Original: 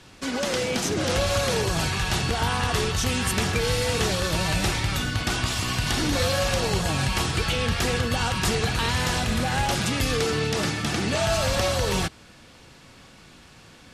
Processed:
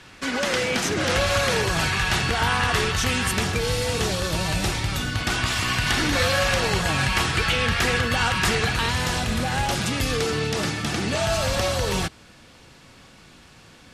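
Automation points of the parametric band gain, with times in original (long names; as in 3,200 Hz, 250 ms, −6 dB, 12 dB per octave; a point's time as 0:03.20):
parametric band 1,800 Hz 1.6 octaves
0:03.08 +7 dB
0:03.59 −1 dB
0:04.95 −1 dB
0:05.58 +7.5 dB
0:08.58 +7.5 dB
0:08.98 +0.5 dB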